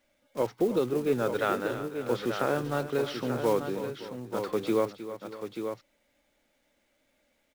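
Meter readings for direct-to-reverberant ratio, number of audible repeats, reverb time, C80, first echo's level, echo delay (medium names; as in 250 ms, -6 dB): no reverb, 3, no reverb, no reverb, -13.0 dB, 314 ms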